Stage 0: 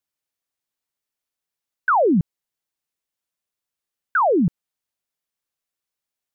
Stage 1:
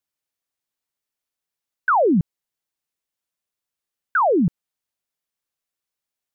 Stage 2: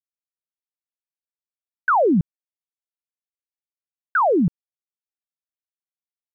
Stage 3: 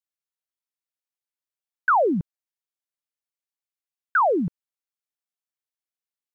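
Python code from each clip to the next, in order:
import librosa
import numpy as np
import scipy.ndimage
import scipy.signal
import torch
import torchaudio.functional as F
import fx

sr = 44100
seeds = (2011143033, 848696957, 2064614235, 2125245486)

y1 = x
y2 = np.sign(y1) * np.maximum(np.abs(y1) - 10.0 ** (-58.5 / 20.0), 0.0)
y3 = fx.low_shelf(y2, sr, hz=320.0, db=-10.0)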